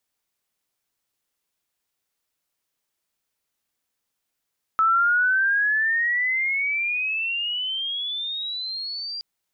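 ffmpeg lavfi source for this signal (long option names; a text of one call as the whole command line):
ffmpeg -f lavfi -i "aevalsrc='pow(10,(-15.5-13.5*t/4.42)/20)*sin(2*PI*1300*4.42/log(4800/1300)*(exp(log(4800/1300)*t/4.42)-1))':duration=4.42:sample_rate=44100" out.wav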